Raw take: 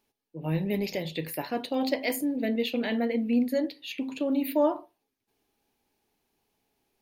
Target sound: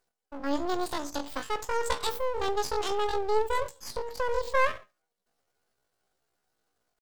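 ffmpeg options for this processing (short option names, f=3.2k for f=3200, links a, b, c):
-af "aeval=exprs='max(val(0),0)':c=same,asetrate=78577,aresample=44100,atempo=0.561231,volume=2dB"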